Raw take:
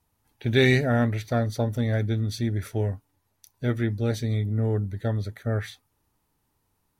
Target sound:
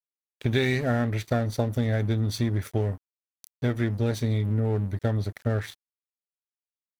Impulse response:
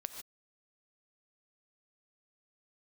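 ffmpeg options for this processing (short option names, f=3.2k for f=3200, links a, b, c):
-af "acompressor=threshold=-25dB:ratio=6,aeval=exprs='sgn(val(0))*max(abs(val(0))-0.00531,0)':c=same,volume=5dB"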